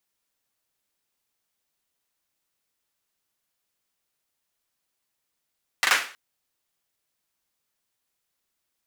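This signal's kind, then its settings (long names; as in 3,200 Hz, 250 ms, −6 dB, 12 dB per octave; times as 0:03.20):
synth clap length 0.32 s, bursts 3, apart 40 ms, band 1,700 Hz, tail 0.40 s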